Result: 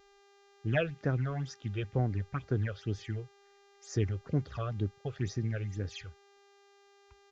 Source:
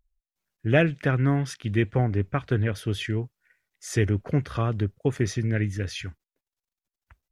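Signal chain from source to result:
all-pass phaser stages 8, 2.1 Hz, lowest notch 240–3,100 Hz
hum with harmonics 400 Hz, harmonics 38, −55 dBFS −5 dB per octave
downsampling to 16,000 Hz
level −7.5 dB

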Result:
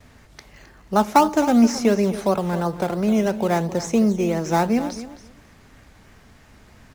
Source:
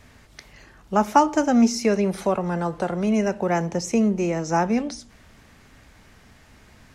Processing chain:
noise gate with hold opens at −46 dBFS
in parallel at −8 dB: sample-and-hold swept by an LFO 12×, swing 60% 2.9 Hz
on the sum: repeating echo 264 ms, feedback 16%, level −14 dB
level −1 dB

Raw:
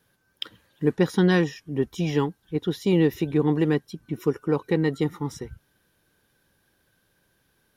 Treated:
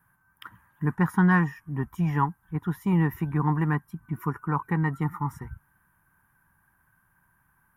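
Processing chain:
drawn EQ curve 170 Hz 0 dB, 510 Hz −19 dB, 970 Hz +8 dB, 1,800 Hz 0 dB, 4,000 Hz −27 dB, 12,000 Hz −1 dB
level +2 dB

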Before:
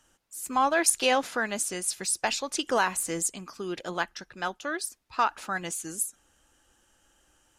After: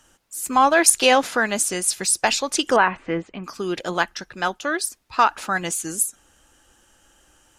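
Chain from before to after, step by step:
0:02.76–0:03.44: low-pass filter 2,600 Hz 24 dB per octave
level +8 dB

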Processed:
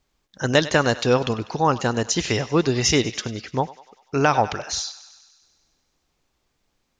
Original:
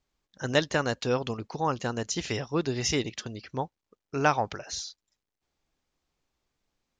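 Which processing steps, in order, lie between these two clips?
feedback echo with a high-pass in the loop 98 ms, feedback 67%, high-pass 620 Hz, level −16.5 dB
boost into a limiter +13 dB
level −4.5 dB

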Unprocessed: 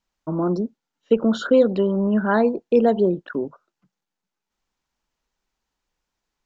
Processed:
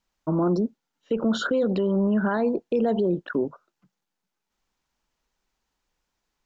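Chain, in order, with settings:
brickwall limiter −17 dBFS, peak gain reduction 11.5 dB
level +1.5 dB

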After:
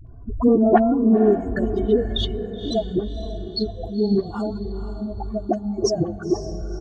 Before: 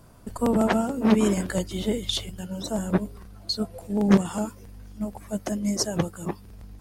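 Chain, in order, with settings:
expanding power law on the bin magnitudes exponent 2.1
low-pass filter 1,300 Hz 6 dB per octave
comb filter 2.7 ms, depth 87%
all-pass dispersion highs, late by 71 ms, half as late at 510 Hz
on a send: feedback delay with all-pass diffusion 506 ms, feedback 41%, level −10.5 dB
on the sum: level +8.5 dB

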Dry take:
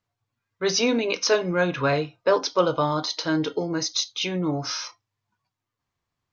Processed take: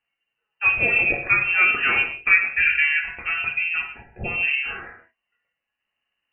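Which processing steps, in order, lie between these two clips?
reverb whose tail is shaped and stops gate 230 ms falling, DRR 0.5 dB
voice inversion scrambler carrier 2,900 Hz

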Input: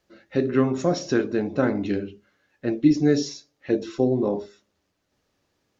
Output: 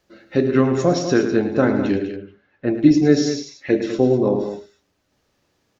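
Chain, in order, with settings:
0:01.96–0:02.75: low-pass filter 2,800 Hz 12 dB per octave
0:03.28–0:03.86: parametric band 2,100 Hz +8.5 dB 0.5 octaves
loudspeakers that aren't time-aligned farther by 37 metres −10 dB, 69 metres −10 dB
level +4.5 dB

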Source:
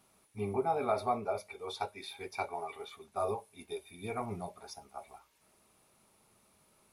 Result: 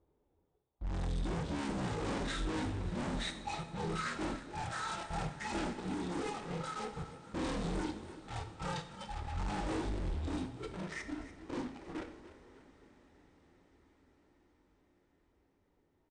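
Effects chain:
reverb reduction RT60 1.1 s
low-pass that shuts in the quiet parts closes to 2,000 Hz, open at −33 dBFS
graphic EQ with 10 bands 250 Hz −5 dB, 500 Hz −8 dB, 4,000 Hz −5 dB
leveller curve on the samples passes 5
in parallel at +2.5 dB: brickwall limiter −33.5 dBFS, peak gain reduction 11.5 dB
on the sum: soft clipping −37 dBFS, distortion −7 dB
echo with shifted repeats 126 ms, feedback 45%, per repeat +97 Hz, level −14.5 dB
formants moved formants −3 semitones
coupled-rooms reverb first 0.27 s, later 4.8 s, from −21 dB, DRR 7 dB
change of speed 0.43×
level +1 dB

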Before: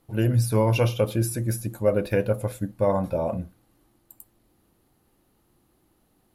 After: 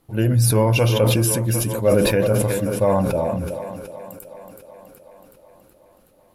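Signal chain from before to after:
feedback echo with a high-pass in the loop 373 ms, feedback 69%, high-pass 150 Hz, level −13.5 dB
level that may fall only so fast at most 23 dB per second
level +3 dB

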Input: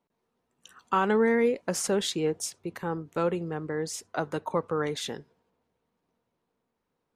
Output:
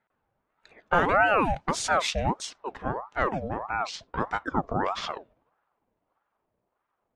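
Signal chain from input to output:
pitch glide at a constant tempo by −11 semitones starting unshifted
low-pass that shuts in the quiet parts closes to 2,200 Hz, open at −22.5 dBFS
ring modulator whose carrier an LFO sweeps 730 Hz, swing 55%, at 1.6 Hz
level +5.5 dB

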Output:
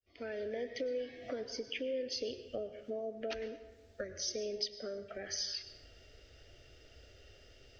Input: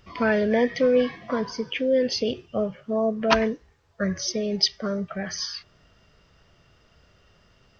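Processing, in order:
fade in at the beginning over 1.41 s
downward compressor 8 to 1, threshold −37 dBFS, peak gain reduction 22.5 dB
phaser with its sweep stopped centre 430 Hz, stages 4
on a send: convolution reverb RT60 1.1 s, pre-delay 94 ms, DRR 12 dB
on the sum: level +2.5 dB

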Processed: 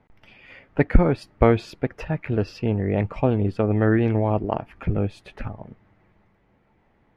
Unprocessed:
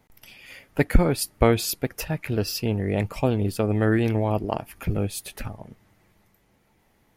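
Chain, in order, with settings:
low-pass filter 2,100 Hz 12 dB per octave
level +2 dB

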